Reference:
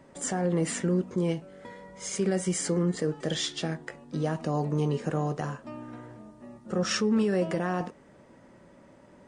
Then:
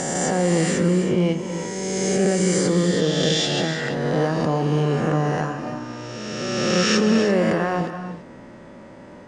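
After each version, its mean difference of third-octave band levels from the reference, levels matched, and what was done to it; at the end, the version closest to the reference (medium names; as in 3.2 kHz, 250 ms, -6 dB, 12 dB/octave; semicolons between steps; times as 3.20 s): 7.0 dB: reverse spectral sustain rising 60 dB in 2.01 s; low-pass 6.5 kHz 12 dB/octave; in parallel at -2 dB: compression, threshold -37 dBFS, peak gain reduction 16 dB; on the sum: gated-style reverb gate 360 ms rising, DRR 8.5 dB; trim +3.5 dB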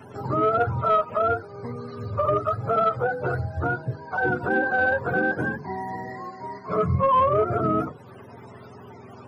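9.5 dB: spectrum inverted on a logarithmic axis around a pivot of 480 Hz; hum notches 50/100/150/200/250/300/350/400/450/500 Hz; in parallel at +2.5 dB: compression, threshold -44 dBFS, peak gain reduction 19.5 dB; on the sum: saturation -17 dBFS, distortion -24 dB; trim +6.5 dB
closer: first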